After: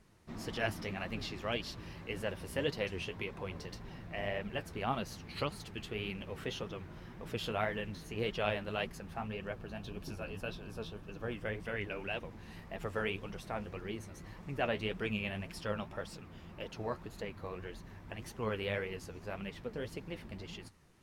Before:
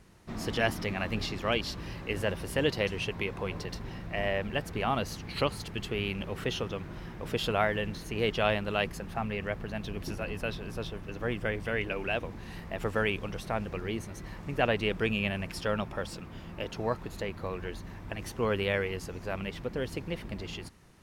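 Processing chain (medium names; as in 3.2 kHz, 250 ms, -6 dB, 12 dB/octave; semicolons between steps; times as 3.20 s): 9.28–11.35 s: band-stop 2 kHz, Q 5.8; flange 1.8 Hz, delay 4.2 ms, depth 9.9 ms, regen +46%; trim -3 dB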